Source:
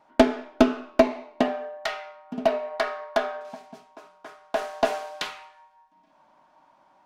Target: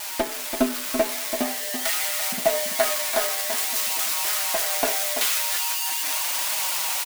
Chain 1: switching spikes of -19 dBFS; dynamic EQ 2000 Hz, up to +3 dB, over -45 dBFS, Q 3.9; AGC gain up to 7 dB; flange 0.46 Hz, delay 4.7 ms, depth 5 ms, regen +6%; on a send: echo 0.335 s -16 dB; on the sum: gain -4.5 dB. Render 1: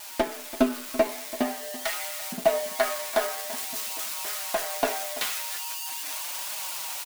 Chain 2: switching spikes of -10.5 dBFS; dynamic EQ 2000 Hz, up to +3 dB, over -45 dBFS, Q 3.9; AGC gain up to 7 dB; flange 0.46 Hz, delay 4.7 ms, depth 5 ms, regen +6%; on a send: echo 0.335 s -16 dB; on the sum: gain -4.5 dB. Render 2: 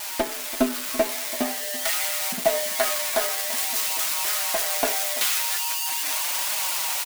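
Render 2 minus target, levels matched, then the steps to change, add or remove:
echo-to-direct -8 dB
change: echo 0.335 s -8 dB

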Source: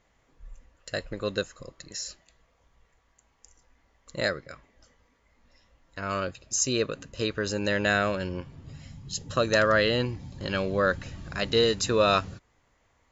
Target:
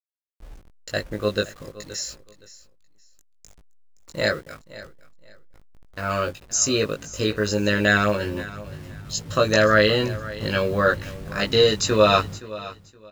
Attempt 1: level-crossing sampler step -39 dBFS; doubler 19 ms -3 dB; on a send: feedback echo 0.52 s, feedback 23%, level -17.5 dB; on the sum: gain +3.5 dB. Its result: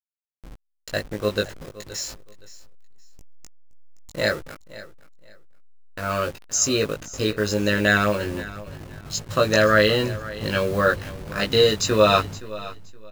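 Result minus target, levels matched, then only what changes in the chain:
level-crossing sampler: distortion +9 dB
change: level-crossing sampler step -47.5 dBFS

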